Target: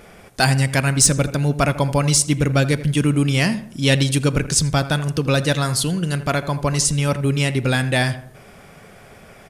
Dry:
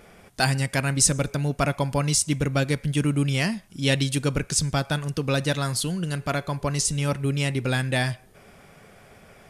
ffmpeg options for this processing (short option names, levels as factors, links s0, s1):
-filter_complex "[0:a]acontrast=47,asplit=2[s0][s1];[s1]adelay=82,lowpass=f=1700:p=1,volume=0.224,asplit=2[s2][s3];[s3]adelay=82,lowpass=f=1700:p=1,volume=0.45,asplit=2[s4][s5];[s5]adelay=82,lowpass=f=1700:p=1,volume=0.45,asplit=2[s6][s7];[s7]adelay=82,lowpass=f=1700:p=1,volume=0.45[s8];[s0][s2][s4][s6][s8]amix=inputs=5:normalize=0"